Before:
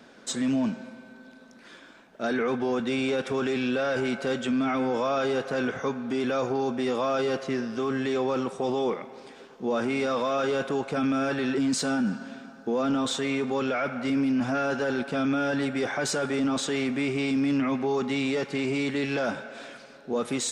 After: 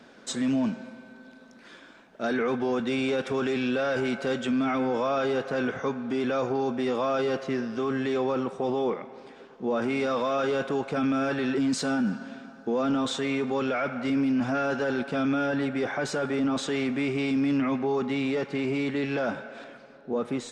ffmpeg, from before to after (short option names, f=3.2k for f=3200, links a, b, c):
-af "asetnsamples=n=441:p=0,asendcmd='4.78 lowpass f 4400;8.32 lowpass f 2500;9.82 lowpass f 5300;15.46 lowpass f 2700;16.57 lowpass f 4400;17.79 lowpass f 2600;19.64 lowpass f 1300',lowpass=f=7.5k:p=1"